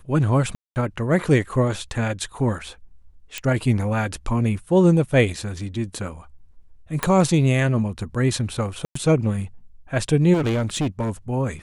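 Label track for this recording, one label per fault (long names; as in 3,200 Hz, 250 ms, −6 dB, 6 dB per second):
0.550000	0.760000	drop-out 209 ms
3.380000	3.380000	click −12 dBFS
7.030000	7.030000	click −6 dBFS
8.850000	8.950000	drop-out 104 ms
10.330000	11.100000	clipping −18.5 dBFS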